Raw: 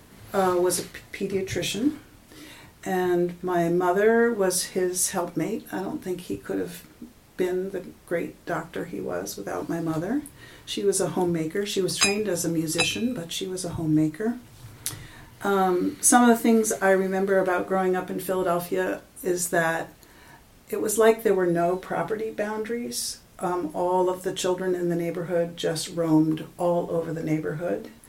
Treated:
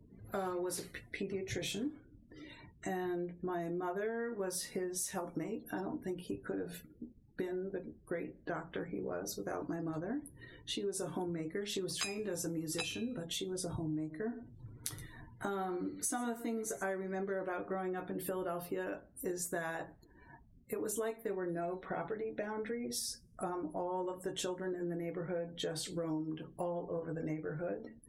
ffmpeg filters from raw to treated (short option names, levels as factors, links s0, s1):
-filter_complex "[0:a]asettb=1/sr,asplit=3[s0][s1][s2];[s0]atrim=end=13.704[s3];[s1]atrim=start=13.7:end=16.85,asetpts=PTS-STARTPTS,afade=t=in:d=0.004:c=qsin,afade=t=out:st=3.146:d=0.004:c=qsin,aecho=1:1:121:0.15,atrim=end_sample=138915[s4];[s2]atrim=start=16.846[s5];[s3][s4]acrossfade=d=0.004:c1=hsin:c2=qsin[s6];[s6][s5]acrossfade=d=0.004:c1=qsin:c2=hsin,afftdn=nr=35:nf=-46,acompressor=threshold=0.0316:ratio=6,volume=0.531"